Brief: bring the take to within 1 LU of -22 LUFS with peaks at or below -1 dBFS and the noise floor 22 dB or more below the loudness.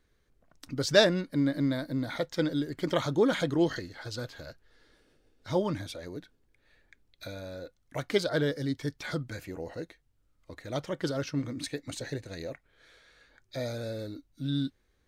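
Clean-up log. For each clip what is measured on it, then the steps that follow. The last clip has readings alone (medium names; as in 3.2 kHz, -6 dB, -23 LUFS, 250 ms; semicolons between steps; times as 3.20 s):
loudness -31.5 LUFS; peak level -7.5 dBFS; loudness target -22.0 LUFS
-> trim +9.5 dB; peak limiter -1 dBFS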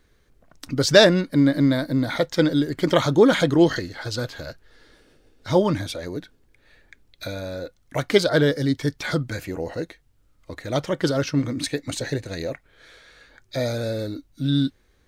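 loudness -22.0 LUFS; peak level -1.0 dBFS; noise floor -61 dBFS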